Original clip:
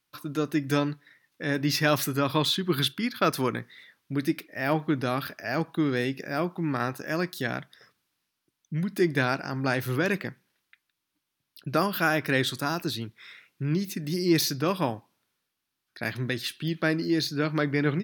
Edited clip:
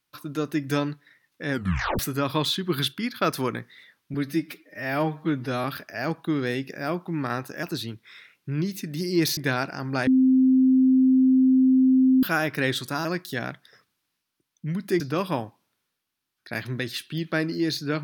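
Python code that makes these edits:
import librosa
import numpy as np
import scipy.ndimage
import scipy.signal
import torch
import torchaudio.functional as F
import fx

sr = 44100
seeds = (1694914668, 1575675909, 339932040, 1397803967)

y = fx.edit(x, sr, fx.tape_stop(start_s=1.51, length_s=0.48),
    fx.stretch_span(start_s=4.14, length_s=1.0, factor=1.5),
    fx.swap(start_s=7.13, length_s=1.95, other_s=12.76, other_length_s=1.74),
    fx.bleep(start_s=9.78, length_s=2.16, hz=260.0, db=-14.5), tone=tone)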